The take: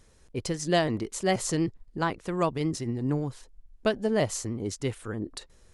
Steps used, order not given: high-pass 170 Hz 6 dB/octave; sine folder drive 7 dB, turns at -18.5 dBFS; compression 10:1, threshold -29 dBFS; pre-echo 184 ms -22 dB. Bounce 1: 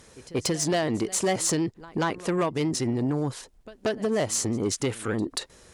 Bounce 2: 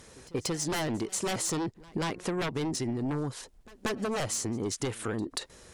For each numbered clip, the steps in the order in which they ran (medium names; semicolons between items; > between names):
compression > pre-echo > sine folder > high-pass; high-pass > sine folder > compression > pre-echo